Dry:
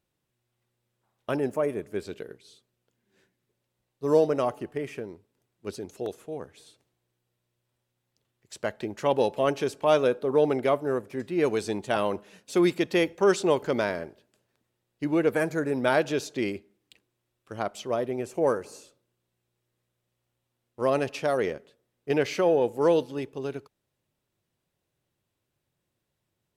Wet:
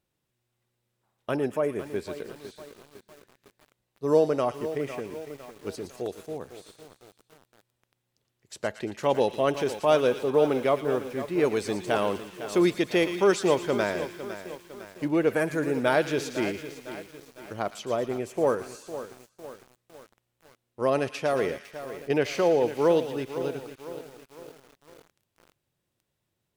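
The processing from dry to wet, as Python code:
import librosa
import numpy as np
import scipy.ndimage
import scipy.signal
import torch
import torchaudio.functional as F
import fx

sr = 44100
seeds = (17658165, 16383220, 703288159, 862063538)

y = fx.echo_wet_highpass(x, sr, ms=115, feedback_pct=57, hz=2000.0, wet_db=-8)
y = fx.echo_crushed(y, sr, ms=505, feedback_pct=55, bits=7, wet_db=-12.0)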